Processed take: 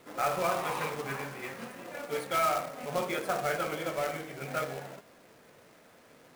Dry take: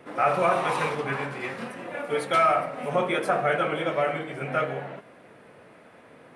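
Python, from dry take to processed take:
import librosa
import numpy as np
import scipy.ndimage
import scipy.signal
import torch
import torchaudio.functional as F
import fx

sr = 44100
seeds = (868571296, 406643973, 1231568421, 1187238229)

y = fx.quant_companded(x, sr, bits=4)
y = F.gain(torch.from_numpy(y), -7.5).numpy()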